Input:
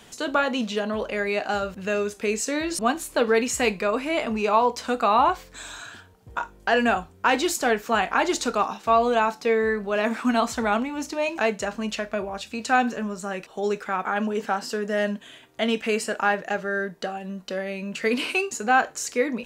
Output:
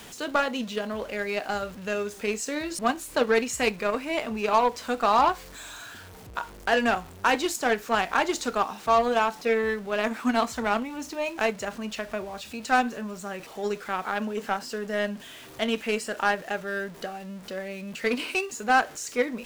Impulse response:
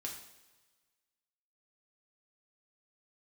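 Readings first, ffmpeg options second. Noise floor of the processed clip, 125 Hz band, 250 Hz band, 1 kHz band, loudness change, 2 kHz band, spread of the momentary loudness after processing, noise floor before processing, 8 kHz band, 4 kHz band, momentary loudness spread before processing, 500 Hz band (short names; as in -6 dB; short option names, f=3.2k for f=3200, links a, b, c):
-45 dBFS, -3.5 dB, -3.5 dB, -2.0 dB, -2.5 dB, -2.0 dB, 13 LU, -51 dBFS, -4.0 dB, -2.0 dB, 10 LU, -3.0 dB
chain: -af "aeval=exprs='val(0)+0.5*0.0251*sgn(val(0))':c=same,aeval=exprs='0.422*(cos(1*acos(clip(val(0)/0.422,-1,1)))-cos(1*PI/2))+0.0335*(cos(7*acos(clip(val(0)/0.422,-1,1)))-cos(7*PI/2))':c=same,volume=-2dB"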